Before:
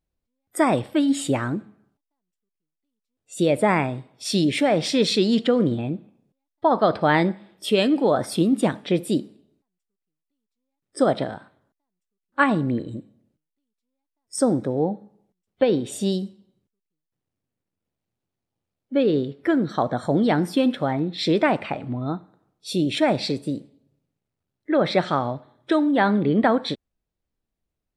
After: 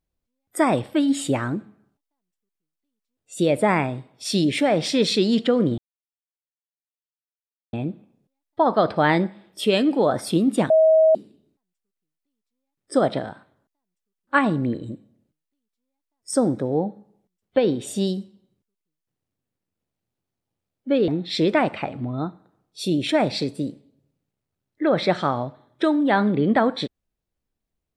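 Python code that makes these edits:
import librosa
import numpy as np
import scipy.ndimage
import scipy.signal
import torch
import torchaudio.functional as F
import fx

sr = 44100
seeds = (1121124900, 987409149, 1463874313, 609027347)

y = fx.edit(x, sr, fx.insert_silence(at_s=5.78, length_s=1.95),
    fx.bleep(start_s=8.75, length_s=0.45, hz=637.0, db=-11.5),
    fx.cut(start_s=19.13, length_s=1.83), tone=tone)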